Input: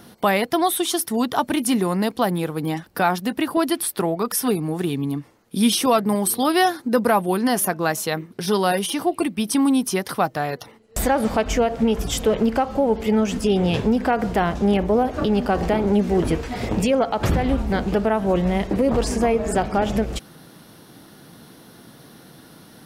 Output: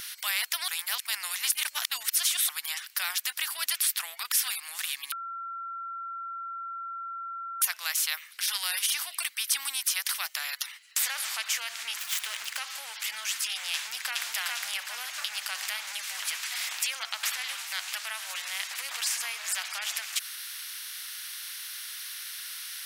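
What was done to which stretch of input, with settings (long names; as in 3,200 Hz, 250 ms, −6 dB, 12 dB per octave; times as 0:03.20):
0:00.68–0:02.49: reverse
0:05.12–0:07.62: beep over 1,360 Hz −13.5 dBFS
0:11.99–0:12.59: running median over 9 samples
0:13.74–0:14.29: delay throw 410 ms, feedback 30%, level −1 dB
whole clip: inverse Chebyshev high-pass filter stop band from 420 Hz, stop band 70 dB; every bin compressed towards the loudest bin 2 to 1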